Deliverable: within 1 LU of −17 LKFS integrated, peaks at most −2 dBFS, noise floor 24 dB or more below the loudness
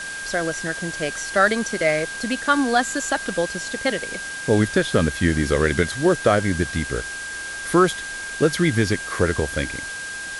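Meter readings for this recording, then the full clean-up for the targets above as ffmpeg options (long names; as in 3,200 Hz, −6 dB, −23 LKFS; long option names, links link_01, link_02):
interfering tone 1,600 Hz; level of the tone −30 dBFS; background noise floor −32 dBFS; target noise floor −46 dBFS; integrated loudness −22.0 LKFS; sample peak −3.5 dBFS; target loudness −17.0 LKFS
→ -af "bandreject=frequency=1600:width=30"
-af "afftdn=noise_reduction=14:noise_floor=-32"
-af "volume=5dB,alimiter=limit=-2dB:level=0:latency=1"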